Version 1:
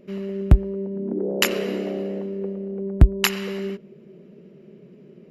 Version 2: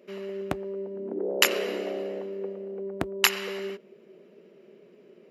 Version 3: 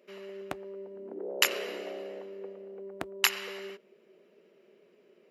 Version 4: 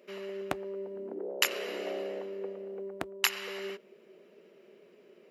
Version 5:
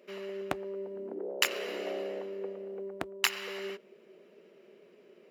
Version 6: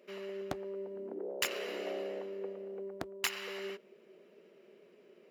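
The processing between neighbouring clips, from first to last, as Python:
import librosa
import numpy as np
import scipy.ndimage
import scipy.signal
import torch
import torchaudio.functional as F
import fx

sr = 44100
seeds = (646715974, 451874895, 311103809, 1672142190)

y1 = scipy.signal.sosfilt(scipy.signal.butter(2, 430.0, 'highpass', fs=sr, output='sos'), x)
y2 = fx.low_shelf(y1, sr, hz=330.0, db=-11.5)
y2 = y2 * librosa.db_to_amplitude(-3.5)
y3 = fx.rider(y2, sr, range_db=4, speed_s=0.5)
y4 = scipy.ndimage.median_filter(y3, 3, mode='constant')
y5 = np.clip(y4, -10.0 ** (-21.0 / 20.0), 10.0 ** (-21.0 / 20.0))
y5 = y5 * librosa.db_to_amplitude(-2.5)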